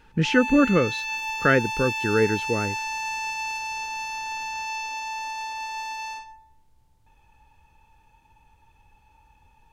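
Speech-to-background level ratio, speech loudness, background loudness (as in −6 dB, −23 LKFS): 6.5 dB, −22.5 LKFS, −29.0 LKFS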